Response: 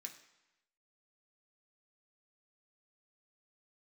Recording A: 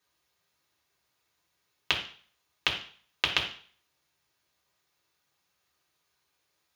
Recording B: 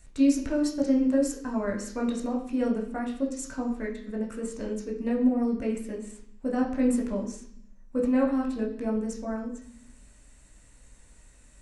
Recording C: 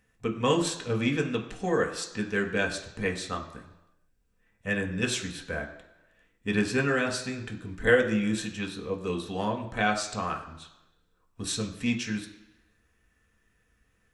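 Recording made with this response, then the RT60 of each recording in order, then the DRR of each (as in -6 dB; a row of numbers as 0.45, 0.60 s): C; 0.45, 0.65, 0.95 s; -1.0, -2.0, 1.5 dB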